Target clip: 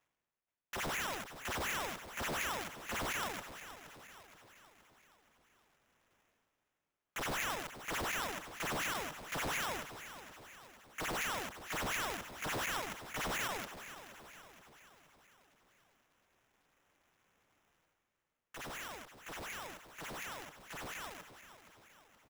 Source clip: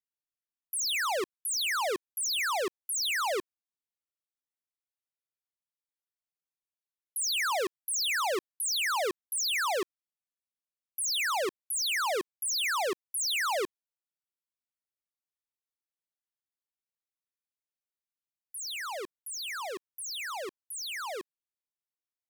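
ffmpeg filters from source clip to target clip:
ffmpeg -i in.wav -af "highpass=800,areverse,acompressor=mode=upward:threshold=-45dB:ratio=2.5,areverse,acrusher=samples=10:mix=1:aa=0.000001,aecho=1:1:472|944|1416|1888|2360:0.237|0.123|0.0641|0.0333|0.0173,aeval=exprs='val(0)*sgn(sin(2*PI*200*n/s))':channel_layout=same,volume=-7.5dB" out.wav

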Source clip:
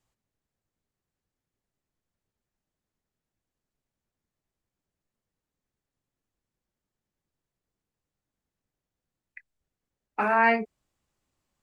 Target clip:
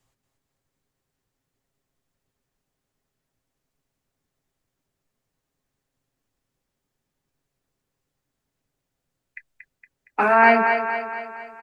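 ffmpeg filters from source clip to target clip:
ffmpeg -i in.wav -filter_complex "[0:a]aecho=1:1:7.4:0.33,acrossover=split=250[link_01][link_02];[link_02]aecho=1:1:232|464|696|928|1160|1392:0.501|0.261|0.136|0.0705|0.0366|0.0191[link_03];[link_01][link_03]amix=inputs=2:normalize=0,volume=6dB" out.wav

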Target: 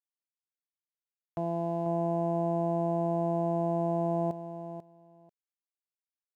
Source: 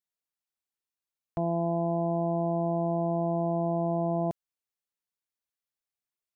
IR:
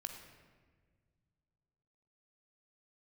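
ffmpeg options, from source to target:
-af "highpass=frequency=120:poles=1,aeval=exprs='sgn(val(0))*max(abs(val(0))-0.00141,0)':channel_layout=same,aecho=1:1:491|982:0.316|0.0506,volume=-2.5dB"

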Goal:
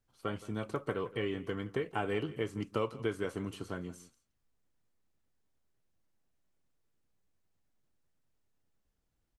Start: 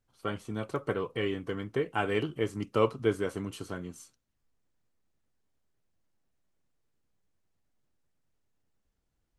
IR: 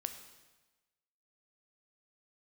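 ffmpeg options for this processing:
-filter_complex "[0:a]acrossover=split=1000|3400[link_01][link_02][link_03];[link_01]acompressor=threshold=-29dB:ratio=4[link_04];[link_02]acompressor=threshold=-39dB:ratio=4[link_05];[link_03]acompressor=threshold=-54dB:ratio=4[link_06];[link_04][link_05][link_06]amix=inputs=3:normalize=0,asplit=2[link_07][link_08];[link_08]adelay=169.1,volume=-18dB,highshelf=frequency=4000:gain=-3.8[link_09];[link_07][link_09]amix=inputs=2:normalize=0,volume=-1.5dB"

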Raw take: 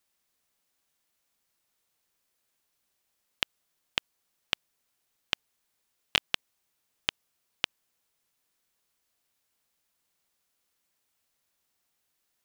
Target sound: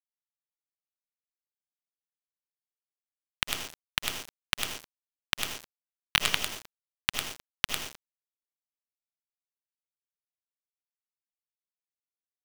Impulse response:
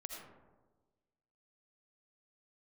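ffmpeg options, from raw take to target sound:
-filter_complex "[0:a]acrossover=split=110[link_01][link_02];[link_01]aeval=exprs='(mod(211*val(0)+1,2)-1)/211':channel_layout=same[link_03];[link_03][link_02]amix=inputs=2:normalize=0,aecho=1:1:101:0.501,asubboost=boost=5:cutoff=140,acrossover=split=220|3000[link_04][link_05][link_06];[link_04]acompressor=threshold=-42dB:ratio=6[link_07];[link_07][link_05][link_06]amix=inputs=3:normalize=0,lowshelf=frequency=75:gain=7[link_08];[1:a]atrim=start_sample=2205,afade=type=out:start_time=0.36:duration=0.01,atrim=end_sample=16317[link_09];[link_08][link_09]afir=irnorm=-1:irlink=0,asplit=2[link_10][link_11];[link_11]acompressor=threshold=-47dB:ratio=12,volume=0.5dB[link_12];[link_10][link_12]amix=inputs=2:normalize=0,acrusher=bits=4:dc=4:mix=0:aa=0.000001,volume=7dB"

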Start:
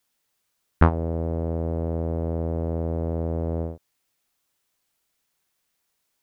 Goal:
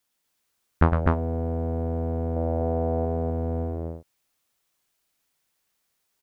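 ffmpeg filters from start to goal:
ffmpeg -i in.wav -filter_complex "[0:a]asettb=1/sr,asplit=3[link_01][link_02][link_03];[link_01]atrim=end=2.364[link_04];[link_02]atrim=start=2.36:end=3.05,asetpts=PTS-STARTPTS,afade=type=in:duration=0.004:curve=qsin,afade=type=out:start_time=0.686:duration=0.004:curve=qsin,equalizer=frequency=670:width_type=o:width=1.4:gain=7.5[link_05];[link_03]atrim=start=3.046[link_06];[link_04][link_05]acrossfade=duration=0.004:curve1=hsin:curve2=qsin[link_07];[link_07][link_06]acrossfade=duration=0.004:curve1=qsin:curve2=hsin,aecho=1:1:107.9|250.7:0.447|0.794,volume=-2.5dB" out.wav

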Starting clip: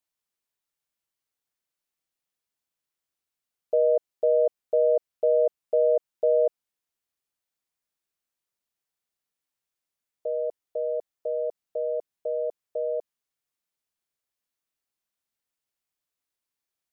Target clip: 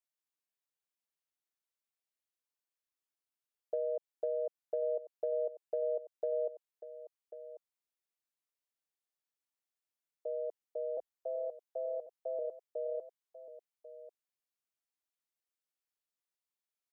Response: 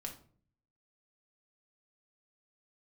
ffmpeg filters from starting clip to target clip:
-filter_complex "[0:a]highpass=280,acompressor=threshold=-23dB:ratio=6,asettb=1/sr,asplit=3[link_01][link_02][link_03];[link_01]atrim=end=10.974[link_04];[link_02]atrim=start=10.97:end=12.39,asetpts=PTS-STARTPTS,afade=type=in:duration=0.004:curve=qsin,afade=type=out:start_time=1.416:duration=0.004:curve=qsin,afreqshift=34[link_05];[link_03]atrim=start=12.386[link_06];[link_04][link_05]acrossfade=duration=0.004:curve1=hsin:curve2=qsin[link_07];[link_07][link_06]acrossfade=duration=0.004:curve1=qsin:curve2=hsin,aecho=1:1:1092:0.2,volume=-8.5dB"

